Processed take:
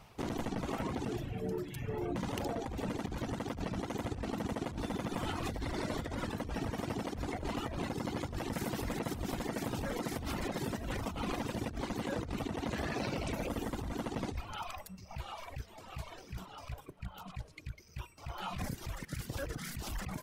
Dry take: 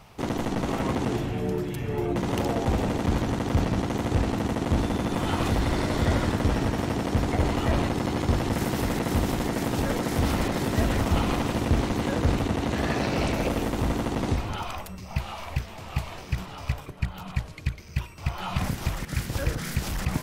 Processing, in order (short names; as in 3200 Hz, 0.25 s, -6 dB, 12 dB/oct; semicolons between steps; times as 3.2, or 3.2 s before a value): reverb removal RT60 1.7 s; negative-ratio compressor -29 dBFS, ratio -1; gain -7.5 dB